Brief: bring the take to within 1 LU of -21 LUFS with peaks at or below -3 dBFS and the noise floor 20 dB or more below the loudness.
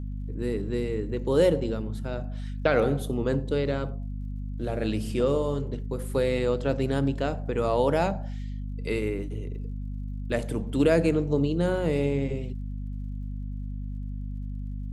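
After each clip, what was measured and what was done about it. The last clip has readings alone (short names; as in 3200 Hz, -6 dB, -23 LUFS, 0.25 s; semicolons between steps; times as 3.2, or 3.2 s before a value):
ticks 40/s; hum 50 Hz; harmonics up to 250 Hz; hum level -31 dBFS; loudness -28.5 LUFS; peak -10.0 dBFS; loudness target -21.0 LUFS
-> de-click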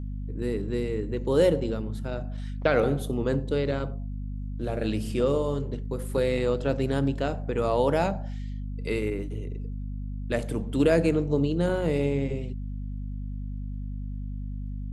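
ticks 0.067/s; hum 50 Hz; harmonics up to 250 Hz; hum level -31 dBFS
-> notches 50/100/150/200/250 Hz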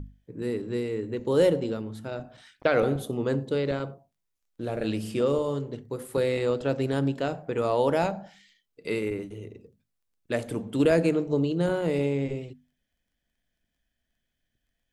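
hum none; loudness -27.5 LUFS; peak -10.0 dBFS; loudness target -21.0 LUFS
-> gain +6.5 dB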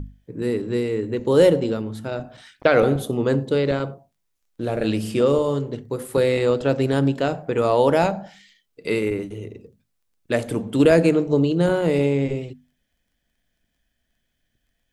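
loudness -21.0 LUFS; peak -3.5 dBFS; noise floor -74 dBFS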